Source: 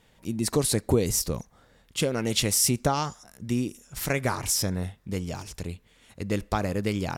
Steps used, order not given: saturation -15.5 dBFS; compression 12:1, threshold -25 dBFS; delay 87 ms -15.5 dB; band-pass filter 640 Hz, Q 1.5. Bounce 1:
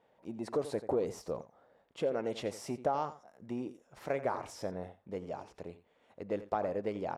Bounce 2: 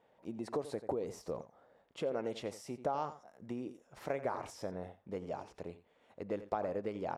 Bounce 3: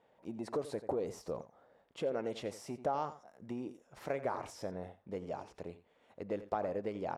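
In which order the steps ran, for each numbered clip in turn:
delay > saturation > band-pass filter > compression; delay > compression > band-pass filter > saturation; saturation > delay > compression > band-pass filter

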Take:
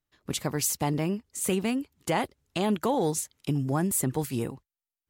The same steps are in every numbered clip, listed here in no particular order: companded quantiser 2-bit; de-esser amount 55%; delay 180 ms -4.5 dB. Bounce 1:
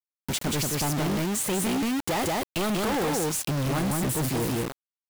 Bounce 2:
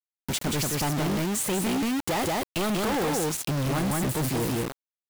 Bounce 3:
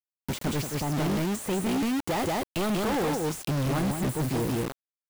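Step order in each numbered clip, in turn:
delay > de-esser > companded quantiser; de-esser > delay > companded quantiser; delay > companded quantiser > de-esser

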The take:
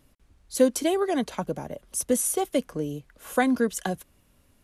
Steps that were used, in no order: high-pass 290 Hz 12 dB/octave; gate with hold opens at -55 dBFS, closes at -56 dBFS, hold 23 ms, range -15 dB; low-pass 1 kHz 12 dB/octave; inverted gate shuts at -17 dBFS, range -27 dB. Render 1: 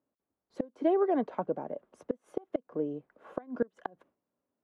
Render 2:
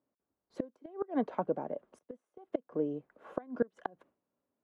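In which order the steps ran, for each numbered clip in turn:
high-pass > gate with hold > low-pass > inverted gate; high-pass > inverted gate > gate with hold > low-pass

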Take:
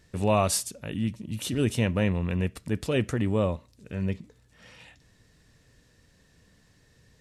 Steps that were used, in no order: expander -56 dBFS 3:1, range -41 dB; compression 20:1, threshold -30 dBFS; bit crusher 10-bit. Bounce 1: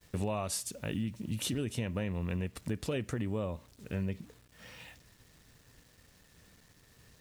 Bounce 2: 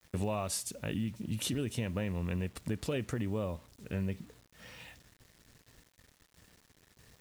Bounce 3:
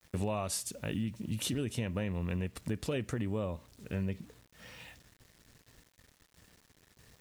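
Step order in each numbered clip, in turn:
bit crusher > compression > expander; compression > expander > bit crusher; expander > bit crusher > compression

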